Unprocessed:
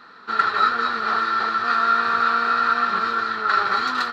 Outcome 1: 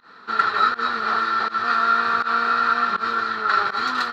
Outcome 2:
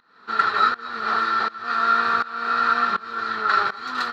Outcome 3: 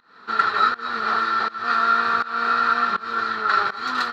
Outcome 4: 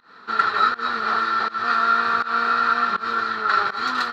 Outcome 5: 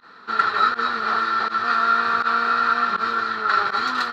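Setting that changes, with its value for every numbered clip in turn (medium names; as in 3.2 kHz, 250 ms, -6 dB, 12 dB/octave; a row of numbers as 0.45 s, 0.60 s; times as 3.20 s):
volume shaper, release: 116 ms, 537 ms, 314 ms, 184 ms, 70 ms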